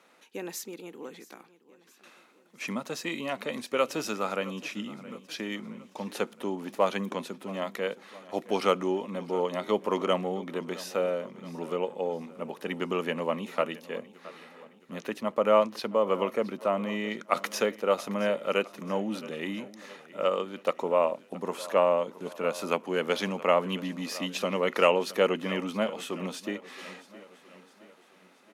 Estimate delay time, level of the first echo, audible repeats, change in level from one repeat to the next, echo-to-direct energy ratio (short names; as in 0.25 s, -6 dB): 0.669 s, -18.5 dB, 3, -5.5 dB, -17.0 dB